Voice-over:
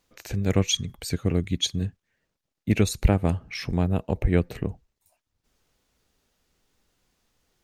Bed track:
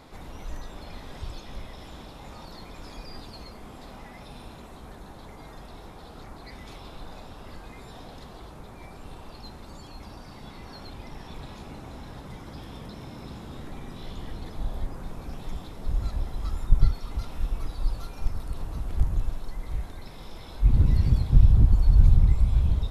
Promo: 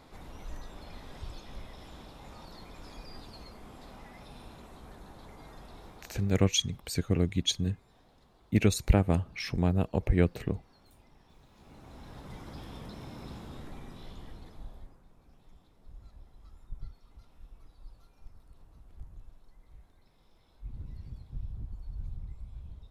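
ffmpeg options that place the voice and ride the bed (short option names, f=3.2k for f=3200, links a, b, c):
-filter_complex "[0:a]adelay=5850,volume=-3dB[a];[1:a]volume=10.5dB,afade=t=out:st=5.86:d=0.63:silence=0.199526,afade=t=in:st=11.51:d=0.88:silence=0.158489,afade=t=out:st=13.32:d=1.69:silence=0.105925[b];[a][b]amix=inputs=2:normalize=0"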